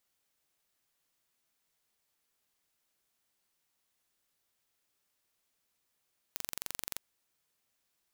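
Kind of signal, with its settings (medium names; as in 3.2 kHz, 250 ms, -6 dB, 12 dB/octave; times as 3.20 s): pulse train 23.1 per s, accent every 0, -9.5 dBFS 0.61 s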